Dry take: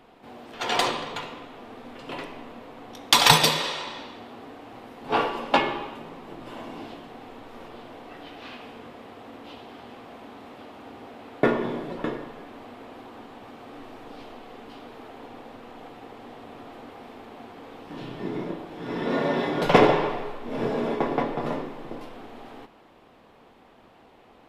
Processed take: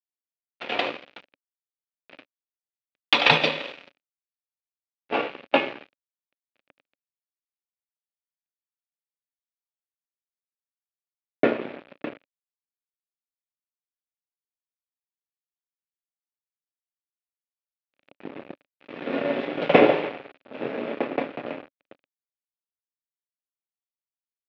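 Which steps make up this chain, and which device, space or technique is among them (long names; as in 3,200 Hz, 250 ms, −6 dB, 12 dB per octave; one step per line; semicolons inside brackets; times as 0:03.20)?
blown loudspeaker (dead-zone distortion −29 dBFS; loudspeaker in its box 170–3,600 Hz, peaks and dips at 280 Hz +5 dB, 560 Hz +7 dB, 1,000 Hz −6 dB, 2,500 Hz +7 dB)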